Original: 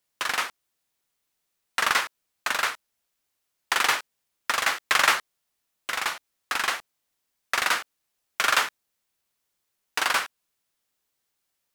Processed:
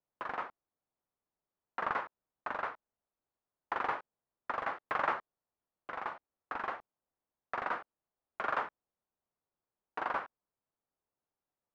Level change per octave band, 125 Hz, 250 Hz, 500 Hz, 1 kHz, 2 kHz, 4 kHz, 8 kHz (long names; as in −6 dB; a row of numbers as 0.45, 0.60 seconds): can't be measured, −5.0 dB, −4.5 dB, −8.0 dB, −15.0 dB, −27.5 dB, below −40 dB